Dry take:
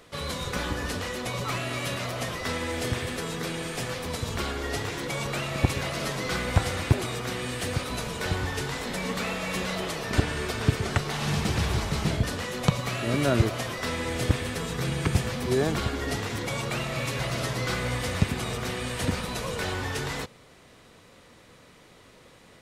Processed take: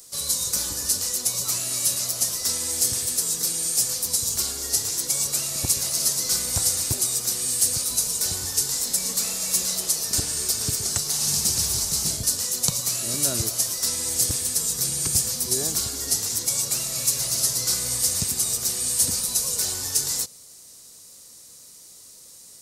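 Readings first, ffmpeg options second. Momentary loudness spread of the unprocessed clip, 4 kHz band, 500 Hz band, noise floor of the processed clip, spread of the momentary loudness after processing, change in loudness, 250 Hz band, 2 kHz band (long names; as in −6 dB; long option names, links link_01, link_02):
5 LU, +7.0 dB, −8.5 dB, −47 dBFS, 3 LU, +7.0 dB, −8.5 dB, −9.5 dB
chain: -af "highshelf=frequency=2700:width_type=q:width=1.5:gain=6,aexciter=amount=12.2:drive=3.8:freq=4900,volume=-8.5dB"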